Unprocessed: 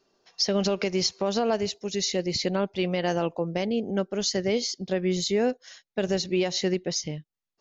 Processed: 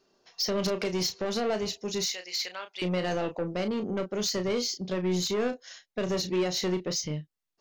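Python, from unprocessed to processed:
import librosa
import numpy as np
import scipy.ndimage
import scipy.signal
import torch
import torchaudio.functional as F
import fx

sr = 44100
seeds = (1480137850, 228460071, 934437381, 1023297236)

y = fx.highpass(x, sr, hz=1400.0, slope=12, at=(2.03, 2.82))
y = 10.0 ** (-24.0 / 20.0) * np.tanh(y / 10.0 ** (-24.0 / 20.0))
y = fx.doubler(y, sr, ms=33.0, db=-8.5)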